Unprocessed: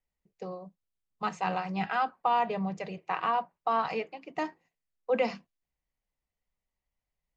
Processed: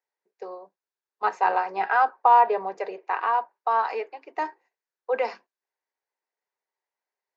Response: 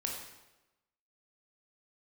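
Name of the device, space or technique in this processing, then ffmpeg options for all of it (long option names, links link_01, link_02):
phone speaker on a table: -filter_complex "[0:a]asettb=1/sr,asplit=3[link_01][link_02][link_03];[link_01]atrim=end=1.244[link_04];[link_02]atrim=start=1.24:end=3.08,asetpts=PTS-STARTPTS,afade=type=in:duration=0.004:curve=qsin,afade=type=out:start_time=1.836:duration=0.004:curve=qsin,equalizer=frequency=560:width=0.46:gain=5.5[link_05];[link_03]atrim=start=3.076[link_06];[link_04][link_05]acrossfade=duration=0.004:curve1=hsin:curve2=qsin[link_07];[link_07][link_06]acrossfade=duration=0.004:curve1=qsin:curve2=hsin,highpass=frequency=360:width=0.5412,highpass=frequency=360:width=1.3066,equalizer=frequency=400:width_type=q:width=4:gain=7,equalizer=frequency=910:width_type=q:width=4:gain=8,equalizer=frequency=1600:width_type=q:width=4:gain=8,equalizer=frequency=3100:width_type=q:width=4:gain=-6,lowpass=frequency=6500:width=0.5412,lowpass=frequency=6500:width=1.3066"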